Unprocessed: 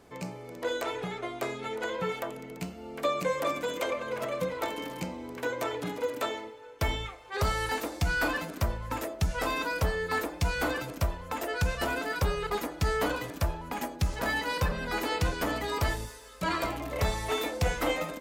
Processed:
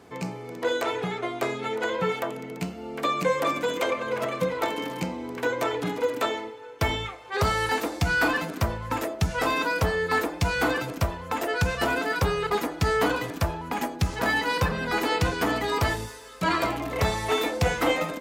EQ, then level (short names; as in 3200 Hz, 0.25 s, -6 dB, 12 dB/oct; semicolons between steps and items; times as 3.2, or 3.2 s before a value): HPF 82 Hz 12 dB/oct; high shelf 6300 Hz -5 dB; notch 580 Hz, Q 12; +6.0 dB